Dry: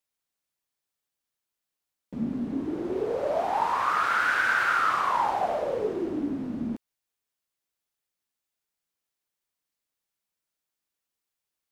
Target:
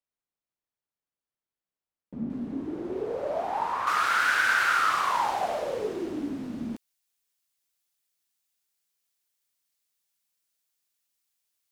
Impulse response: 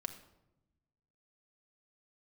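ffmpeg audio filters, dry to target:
-af "asetnsamples=nb_out_samples=441:pad=0,asendcmd='2.3 highshelf g -2;3.87 highshelf g 11',highshelf=frequency=2200:gain=-11.5,volume=-3dB"

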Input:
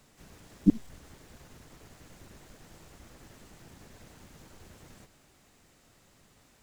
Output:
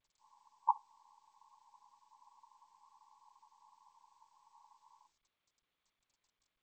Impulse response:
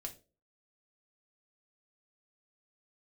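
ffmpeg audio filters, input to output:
-filter_complex "[0:a]aeval=exprs='0.422*(cos(1*acos(clip(val(0)/0.422,-1,1)))-cos(1*PI/2))+0.075*(cos(4*acos(clip(val(0)/0.422,-1,1)))-cos(4*PI/2))+0.168*(cos(7*acos(clip(val(0)/0.422,-1,1)))-cos(7*PI/2))':channel_layout=same,asplit=2[link_01][link_02];[1:a]atrim=start_sample=2205[link_03];[link_02][link_03]afir=irnorm=-1:irlink=0,volume=-4dB[link_04];[link_01][link_04]amix=inputs=2:normalize=0,aeval=exprs='sgn(val(0))*max(abs(val(0))-0.00562,0)':channel_layout=same,aeval=exprs='0.299*(cos(1*acos(clip(val(0)/0.299,-1,1)))-cos(1*PI/2))+0.0106*(cos(3*acos(clip(val(0)/0.299,-1,1)))-cos(3*PI/2))+0.00266*(cos(4*acos(clip(val(0)/0.299,-1,1)))-cos(4*PI/2))+0.00841*(cos(7*acos(clip(val(0)/0.299,-1,1)))-cos(7*PI/2))+0.0266*(cos(8*acos(clip(val(0)/0.299,-1,1)))-cos(8*PI/2))':channel_layout=same,asuperpass=centerf=960:order=20:qfactor=3.2,volume=2dB" -ar 16000 -c:a g722

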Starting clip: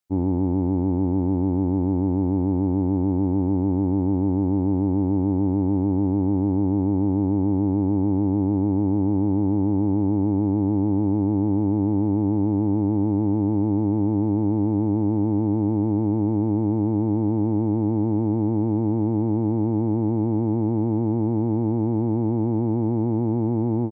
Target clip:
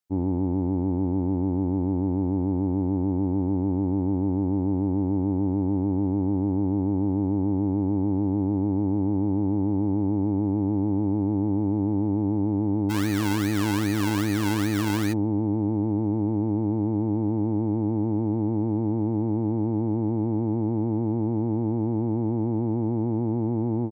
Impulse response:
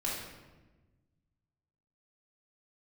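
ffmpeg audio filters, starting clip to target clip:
-filter_complex "[0:a]asplit=3[link_01][link_02][link_03];[link_01]afade=type=out:start_time=12.89:duration=0.02[link_04];[link_02]acrusher=samples=29:mix=1:aa=0.000001:lfo=1:lforange=17.4:lforate=2.5,afade=type=in:start_time=12.89:duration=0.02,afade=type=out:start_time=15.12:duration=0.02[link_05];[link_03]afade=type=in:start_time=15.12:duration=0.02[link_06];[link_04][link_05][link_06]amix=inputs=3:normalize=0,volume=-3dB"

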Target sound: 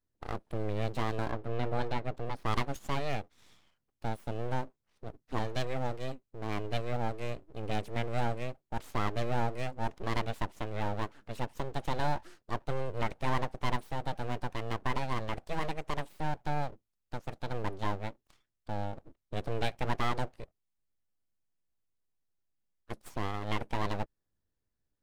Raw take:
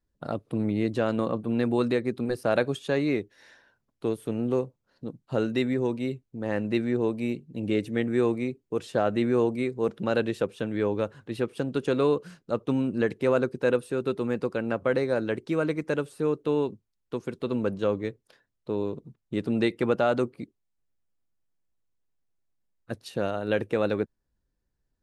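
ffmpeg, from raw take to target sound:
ffmpeg -i in.wav -filter_complex "[0:a]aeval=exprs='abs(val(0))':channel_layout=same,asettb=1/sr,asplit=3[link_01][link_02][link_03];[link_01]atrim=end=1.314[link_04];[link_02]atrim=start=1.31:end=2.46,asetpts=PTS-STARTPTS,afade=type=in:duration=0.004:curve=qsin,afade=type=out:start_time=1.146:duration=0.004:curve=qsin,lowpass=frequency=3300:poles=1[link_05];[link_03]atrim=start=2.456[link_06];[link_04][link_05]acrossfade=duration=0.004:curve1=hsin:curve2=qsin[link_07];[link_07][link_06]acrossfade=duration=0.004:curve1=qsin:curve2=hsin,volume=-4.5dB" out.wav

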